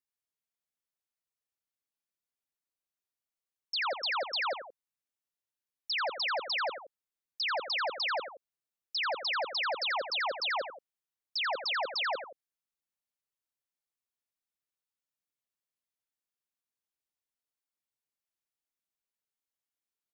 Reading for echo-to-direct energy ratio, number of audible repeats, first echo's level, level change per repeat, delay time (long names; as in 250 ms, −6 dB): −9.5 dB, 2, −10.5 dB, −6.0 dB, 86 ms